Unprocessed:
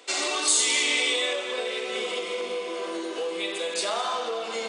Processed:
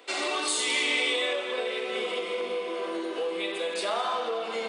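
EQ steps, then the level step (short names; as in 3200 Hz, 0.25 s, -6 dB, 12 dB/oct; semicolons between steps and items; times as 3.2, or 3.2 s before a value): bell 6700 Hz -11 dB 1.1 oct; 0.0 dB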